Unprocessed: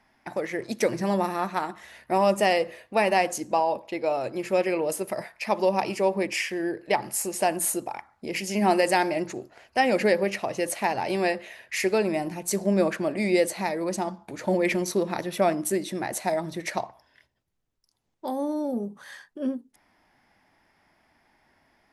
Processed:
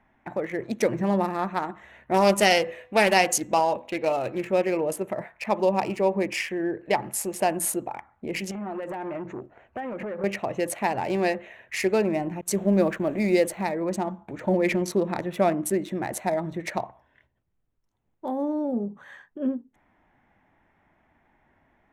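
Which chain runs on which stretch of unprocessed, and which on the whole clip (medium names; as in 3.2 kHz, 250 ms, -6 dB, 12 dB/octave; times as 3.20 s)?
2.14–4.45 s: treble shelf 2.1 kHz +10.5 dB + de-hum 249.8 Hz, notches 22 + loudspeaker Doppler distortion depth 0.19 ms
8.51–10.24 s: treble shelf 3.5 kHz -11 dB + compression 12:1, threshold -27 dBFS + transformer saturation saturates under 820 Hz
12.41–13.64 s: send-on-delta sampling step -43 dBFS + expander -37 dBFS
whole clip: local Wiener filter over 9 samples; bass shelf 190 Hz +5.5 dB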